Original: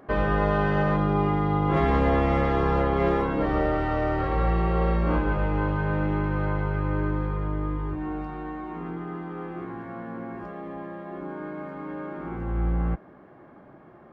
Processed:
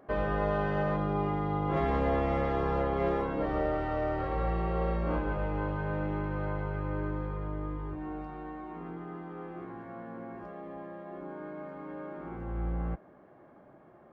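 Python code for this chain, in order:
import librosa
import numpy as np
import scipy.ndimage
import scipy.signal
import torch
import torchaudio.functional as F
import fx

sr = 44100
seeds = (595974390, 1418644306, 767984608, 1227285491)

y = fx.peak_eq(x, sr, hz=600.0, db=4.5, octaves=0.86)
y = F.gain(torch.from_numpy(y), -8.0).numpy()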